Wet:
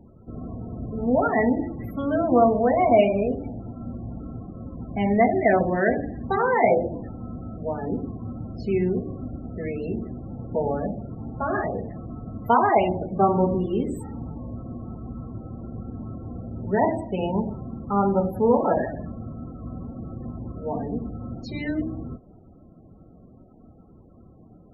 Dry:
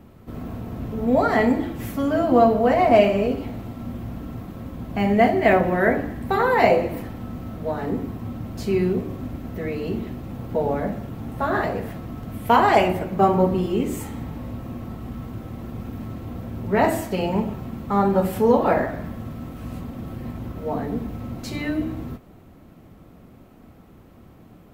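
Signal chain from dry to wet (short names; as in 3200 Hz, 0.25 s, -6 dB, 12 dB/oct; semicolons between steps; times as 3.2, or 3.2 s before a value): loudest bins only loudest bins 32; de-hum 275.5 Hz, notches 4; gain -2 dB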